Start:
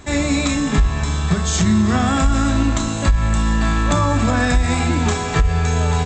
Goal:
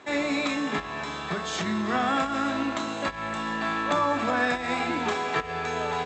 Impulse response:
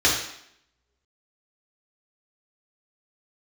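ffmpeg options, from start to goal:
-af "highpass=360,lowpass=3.6k,volume=-3.5dB"

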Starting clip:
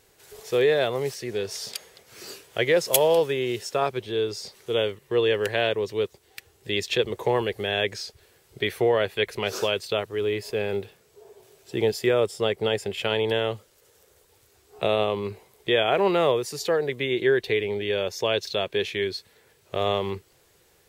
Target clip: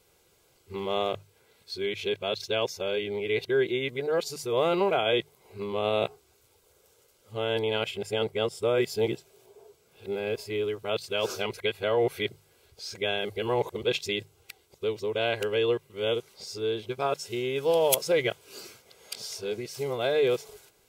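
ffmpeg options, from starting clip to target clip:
-af "areverse,asuperstop=centerf=1800:order=12:qfactor=7.2,bandreject=f=50:t=h:w=6,bandreject=f=100:t=h:w=6,bandreject=f=150:t=h:w=6,volume=-3.5dB"

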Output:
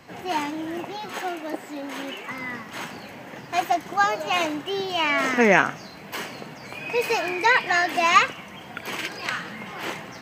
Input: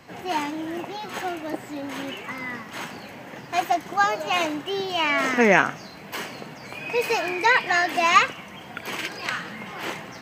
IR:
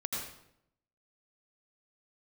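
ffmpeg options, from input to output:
-filter_complex "[0:a]asettb=1/sr,asplit=3[a][b][c];[a]atrim=end=1.124[d];[b]atrim=start=1.12:end=2.31,asetpts=PTS-STARTPTS,afade=t=in:d=0.004:c=qsin,afade=t=out:st=1.186:d=0.004:c=qsin,highpass=220[e];[c]atrim=start=2.306[f];[d][e]acrossfade=d=0.004:c1=hsin:c2=qsin[g];[g][f]acrossfade=d=0.004:c1=qsin:c2=hsin"

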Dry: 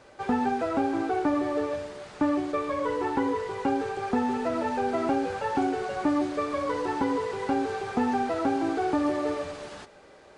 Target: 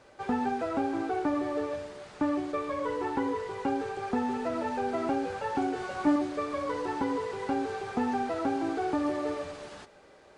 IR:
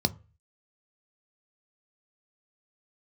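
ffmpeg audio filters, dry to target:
-filter_complex "[0:a]asettb=1/sr,asplit=3[a][b][c];[a]atrim=end=5.744[d];[b]atrim=start=5.74:end=6.16,asetpts=PTS-STARTPTS,afade=t=in:d=0.004:c=qsin,afade=t=out:st=0.416:d=0.004:c=qsin,asplit=2[e][f];[f]adelay=17,volume=-2dB[g];[e][g]amix=inputs=2:normalize=0,atrim=end_sample=18522[h];[c]atrim=start=6.156[i];[d][h]acrossfade=d=0.004:c1=hsin:c2=qsin[j];[j][i]acrossfade=d=0.004:c1=qsin:c2=hsin,volume=-3.5dB"

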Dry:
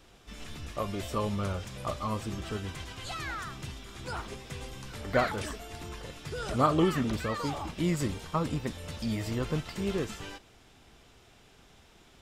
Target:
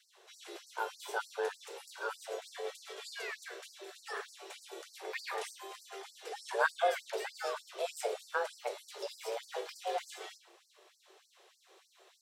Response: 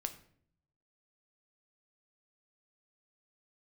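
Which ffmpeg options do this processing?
-filter_complex "[0:a]afreqshift=340[a];[1:a]atrim=start_sample=2205[b];[a][b]afir=irnorm=-1:irlink=0,afftfilt=real='re*gte(b*sr/1024,220*pow(4400/220,0.5+0.5*sin(2*PI*3.3*pts/sr)))':imag='im*gte(b*sr/1024,220*pow(4400/220,0.5+0.5*sin(2*PI*3.3*pts/sr)))':win_size=1024:overlap=0.75,volume=-3dB"

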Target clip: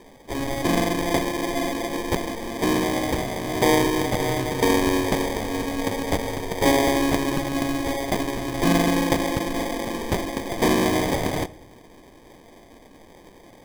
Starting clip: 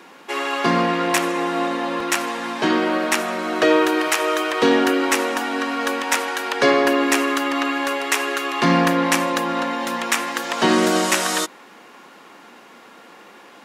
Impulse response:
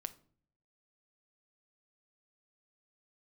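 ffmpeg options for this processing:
-filter_complex "[0:a]acrusher=samples=32:mix=1:aa=0.000001,asplit=2[a][b];[1:a]atrim=start_sample=2205,asetrate=26901,aresample=44100[c];[b][c]afir=irnorm=-1:irlink=0,volume=-2dB[d];[a][d]amix=inputs=2:normalize=0,volume=-8dB"

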